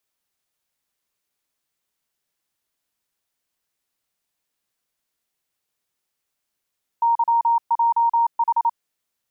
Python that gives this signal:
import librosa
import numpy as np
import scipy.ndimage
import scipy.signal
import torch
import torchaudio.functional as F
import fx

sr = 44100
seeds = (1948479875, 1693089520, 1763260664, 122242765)

y = fx.morse(sr, text='YJH', wpm=28, hz=931.0, level_db=-14.5)